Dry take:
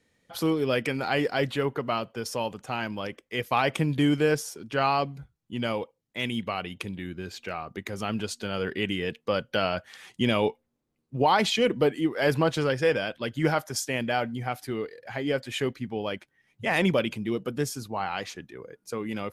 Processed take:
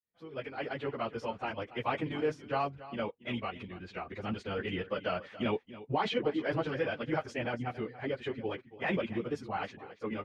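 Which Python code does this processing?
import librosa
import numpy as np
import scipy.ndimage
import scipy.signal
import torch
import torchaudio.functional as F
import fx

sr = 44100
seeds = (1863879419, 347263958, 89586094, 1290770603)

p1 = fx.fade_in_head(x, sr, length_s=2.06)
p2 = scipy.signal.sosfilt(scipy.signal.butter(2, 2800.0, 'lowpass', fs=sr, output='sos'), p1)
p3 = fx.peak_eq(p2, sr, hz=160.0, db=-3.5, octaves=0.68)
p4 = fx.level_steps(p3, sr, step_db=17)
p5 = p3 + (p4 * librosa.db_to_amplitude(3.0))
p6 = fx.stretch_vocoder_free(p5, sr, factor=0.53)
p7 = p6 + 10.0 ** (-16.0 / 20.0) * np.pad(p6, (int(281 * sr / 1000.0), 0))[:len(p6)]
y = p7 * librosa.db_to_amplitude(-6.5)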